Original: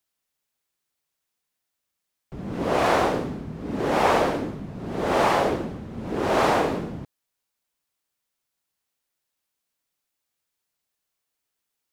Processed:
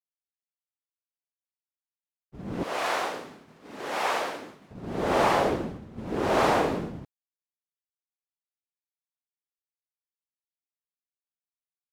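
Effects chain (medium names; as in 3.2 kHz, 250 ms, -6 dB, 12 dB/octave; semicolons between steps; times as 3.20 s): expander -30 dBFS; 2.63–4.71 s: high-pass 1.3 kHz 6 dB/octave; trim -2 dB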